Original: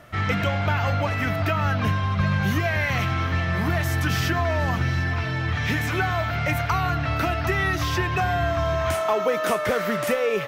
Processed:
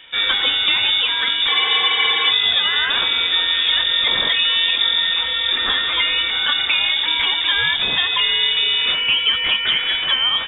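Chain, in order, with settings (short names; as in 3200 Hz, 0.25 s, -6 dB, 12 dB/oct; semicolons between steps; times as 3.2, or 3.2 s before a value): inverted band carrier 3600 Hz; spectral freeze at 1.51, 0.81 s; gain +4.5 dB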